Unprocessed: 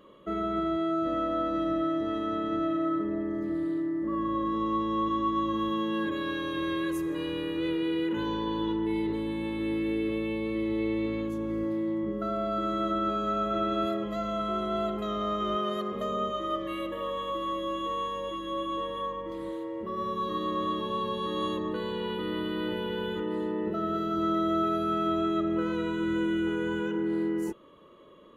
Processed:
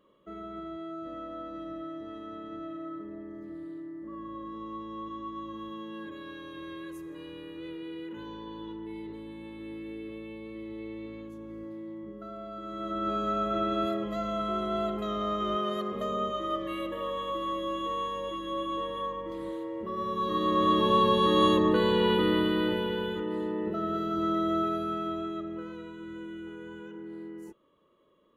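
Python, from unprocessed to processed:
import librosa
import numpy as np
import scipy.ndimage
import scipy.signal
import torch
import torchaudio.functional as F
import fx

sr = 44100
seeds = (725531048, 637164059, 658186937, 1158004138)

y = fx.gain(x, sr, db=fx.line((12.62, -11.0), (13.14, -0.5), (20.07, -0.5), (20.88, 8.5), (22.15, 8.5), (23.19, -1.0), (24.57, -1.0), (25.93, -13.0)))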